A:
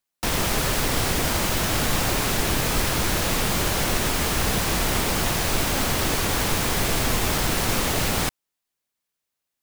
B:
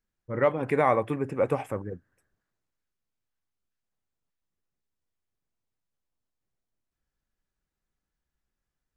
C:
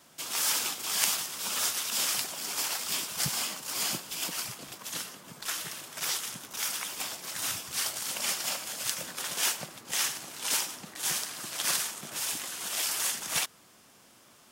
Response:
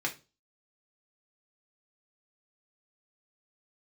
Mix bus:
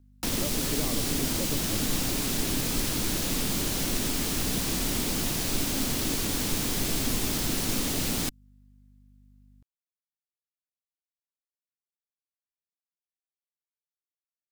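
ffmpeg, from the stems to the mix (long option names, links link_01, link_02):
-filter_complex "[0:a]equalizer=frequency=65:width=0.65:gain=-6.5,aeval=exprs='val(0)+0.00224*(sin(2*PI*50*n/s)+sin(2*PI*2*50*n/s)/2+sin(2*PI*3*50*n/s)/3+sin(2*PI*4*50*n/s)/4+sin(2*PI*5*50*n/s)/5)':channel_layout=same,volume=-3dB[link_01];[1:a]volume=-6.5dB[link_02];[link_01][link_02]amix=inputs=2:normalize=0,equalizer=frequency=270:width=3:gain=6,acrossover=split=370|3000[link_03][link_04][link_05];[link_04]acompressor=threshold=-40dB:ratio=5[link_06];[link_03][link_06][link_05]amix=inputs=3:normalize=0"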